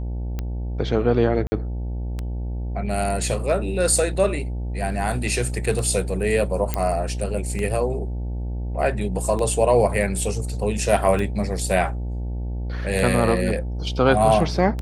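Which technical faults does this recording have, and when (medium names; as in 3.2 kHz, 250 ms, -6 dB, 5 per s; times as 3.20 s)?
buzz 60 Hz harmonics 15 -27 dBFS
tick 33 1/3 rpm -15 dBFS
1.47–1.52 s: dropout 50 ms
6.74 s: pop -8 dBFS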